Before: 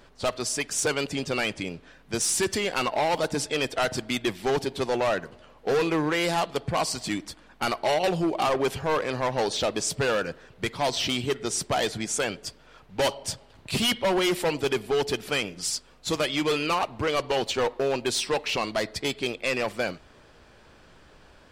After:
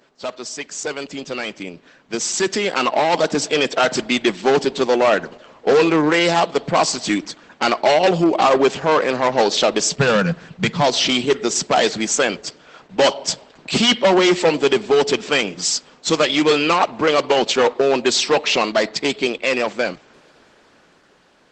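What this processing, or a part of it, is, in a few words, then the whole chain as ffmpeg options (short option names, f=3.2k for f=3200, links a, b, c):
video call: -filter_complex "[0:a]asplit=3[a][b][c];[a]afade=t=out:st=9.99:d=0.02[d];[b]lowshelf=f=230:t=q:w=3:g=8.5,afade=t=in:st=9.99:d=0.02,afade=t=out:st=10.81:d=0.02[e];[c]afade=t=in:st=10.81:d=0.02[f];[d][e][f]amix=inputs=3:normalize=0,highpass=f=170:w=0.5412,highpass=f=170:w=1.3066,dynaudnorm=f=430:g=11:m=12.5dB" -ar 48000 -c:a libopus -b:a 12k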